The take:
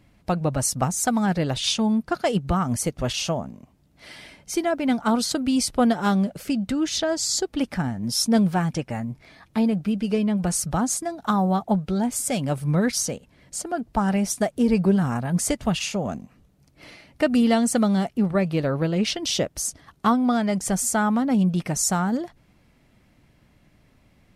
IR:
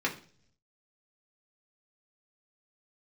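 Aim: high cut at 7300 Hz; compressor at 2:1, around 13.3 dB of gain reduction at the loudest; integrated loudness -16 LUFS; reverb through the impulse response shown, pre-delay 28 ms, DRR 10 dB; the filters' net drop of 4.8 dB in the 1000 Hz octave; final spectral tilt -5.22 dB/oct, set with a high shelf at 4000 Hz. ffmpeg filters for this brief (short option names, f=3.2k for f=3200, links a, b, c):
-filter_complex "[0:a]lowpass=7.3k,equalizer=f=1k:t=o:g=-6.5,highshelf=f=4k:g=-6,acompressor=threshold=-41dB:ratio=2,asplit=2[a][b];[1:a]atrim=start_sample=2205,adelay=28[c];[b][c]afir=irnorm=-1:irlink=0,volume=-18.5dB[d];[a][d]amix=inputs=2:normalize=0,volume=19.5dB"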